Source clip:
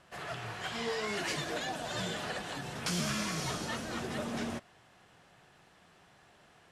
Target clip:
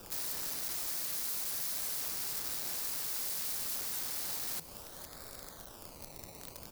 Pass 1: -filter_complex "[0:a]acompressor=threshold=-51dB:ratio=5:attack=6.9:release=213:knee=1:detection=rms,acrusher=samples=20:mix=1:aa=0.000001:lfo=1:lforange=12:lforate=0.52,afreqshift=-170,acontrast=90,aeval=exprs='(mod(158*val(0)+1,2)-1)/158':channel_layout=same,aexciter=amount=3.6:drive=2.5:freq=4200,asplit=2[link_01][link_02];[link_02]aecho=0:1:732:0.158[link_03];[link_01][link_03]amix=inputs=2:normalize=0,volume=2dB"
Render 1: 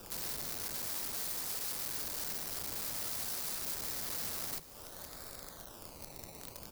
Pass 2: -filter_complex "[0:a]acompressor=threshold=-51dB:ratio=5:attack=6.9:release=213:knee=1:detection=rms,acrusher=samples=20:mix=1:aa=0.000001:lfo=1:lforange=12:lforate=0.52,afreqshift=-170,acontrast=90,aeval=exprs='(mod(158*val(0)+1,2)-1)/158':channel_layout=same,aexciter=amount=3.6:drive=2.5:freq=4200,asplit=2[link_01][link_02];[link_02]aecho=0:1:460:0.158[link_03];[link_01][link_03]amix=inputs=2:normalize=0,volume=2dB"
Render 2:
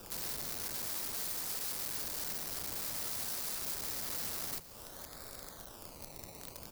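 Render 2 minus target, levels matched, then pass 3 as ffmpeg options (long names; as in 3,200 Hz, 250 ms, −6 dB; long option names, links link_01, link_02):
downward compressor: peak gain reduction +6 dB
-filter_complex "[0:a]acompressor=threshold=-43.5dB:ratio=5:attack=6.9:release=213:knee=1:detection=rms,acrusher=samples=20:mix=1:aa=0.000001:lfo=1:lforange=12:lforate=0.52,afreqshift=-170,acontrast=90,aeval=exprs='(mod(158*val(0)+1,2)-1)/158':channel_layout=same,aexciter=amount=3.6:drive=2.5:freq=4200,asplit=2[link_01][link_02];[link_02]aecho=0:1:460:0.158[link_03];[link_01][link_03]amix=inputs=2:normalize=0,volume=2dB"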